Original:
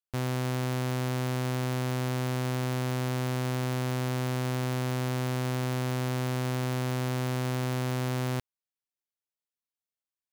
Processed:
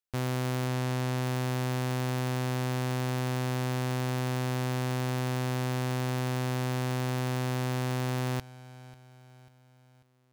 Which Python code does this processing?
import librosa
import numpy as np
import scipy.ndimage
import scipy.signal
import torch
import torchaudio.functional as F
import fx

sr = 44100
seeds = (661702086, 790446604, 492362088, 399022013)

y = fx.echo_feedback(x, sr, ms=542, feedback_pct=48, wet_db=-19.0)
y = fx.doppler_dist(y, sr, depth_ms=0.19)